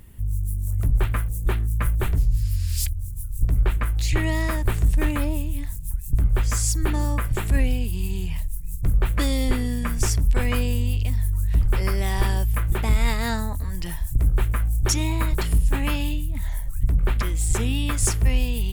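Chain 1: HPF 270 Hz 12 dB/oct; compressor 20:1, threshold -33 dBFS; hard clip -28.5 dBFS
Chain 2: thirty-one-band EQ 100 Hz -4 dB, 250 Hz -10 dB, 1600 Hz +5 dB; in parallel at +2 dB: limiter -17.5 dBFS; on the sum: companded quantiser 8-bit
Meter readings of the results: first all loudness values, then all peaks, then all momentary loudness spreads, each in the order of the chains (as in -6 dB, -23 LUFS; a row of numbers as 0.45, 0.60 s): -38.5, -19.5 LUFS; -28.5, -5.5 dBFS; 5, 5 LU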